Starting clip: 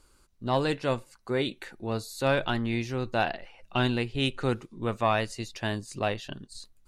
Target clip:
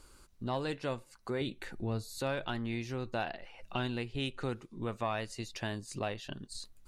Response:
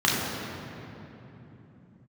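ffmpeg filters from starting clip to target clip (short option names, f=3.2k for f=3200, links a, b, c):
-filter_complex "[0:a]asettb=1/sr,asplit=3[a][b][c];[a]atrim=end=1.414[d];[b]atrim=start=1.41:end=2.18,asetpts=PTS-STARTPTS,afade=t=in:d=0.004:c=qsin,afade=t=out:st=0.766:d=0.004:c=qsin,lowshelf=f=200:g=11[e];[c]atrim=start=2.176[f];[d][e]acrossfade=d=0.004:c1=hsin:c2=qsin[g];[g][f]acrossfade=d=0.004:c1=qsin:c2=hsin,acompressor=threshold=-45dB:ratio=2,volume=3.5dB"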